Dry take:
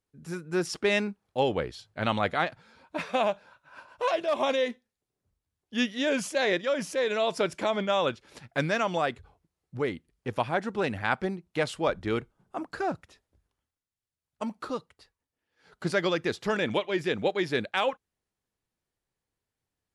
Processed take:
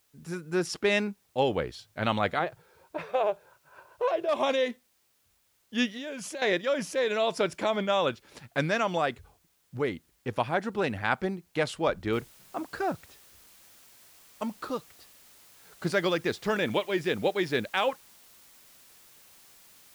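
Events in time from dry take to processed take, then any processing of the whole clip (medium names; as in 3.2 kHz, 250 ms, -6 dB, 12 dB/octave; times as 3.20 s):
2.39–4.29 s: FFT filter 160 Hz 0 dB, 230 Hz -21 dB, 380 Hz +7 dB, 570 Hz 0 dB, 7.6 kHz -13 dB
5.91–6.42 s: compression 8:1, threshold -34 dBFS
12.13 s: noise floor step -70 dB -56 dB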